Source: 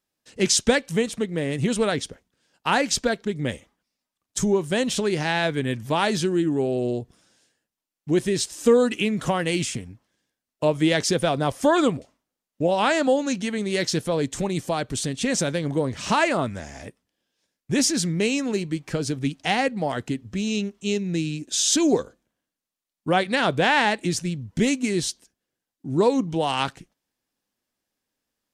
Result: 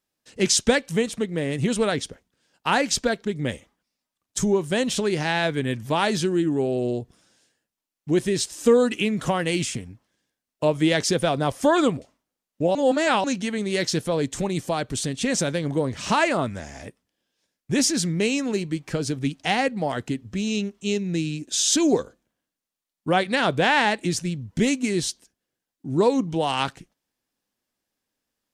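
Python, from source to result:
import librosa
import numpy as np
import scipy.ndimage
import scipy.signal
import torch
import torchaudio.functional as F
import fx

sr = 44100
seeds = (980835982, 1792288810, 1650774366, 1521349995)

y = fx.edit(x, sr, fx.reverse_span(start_s=12.75, length_s=0.49), tone=tone)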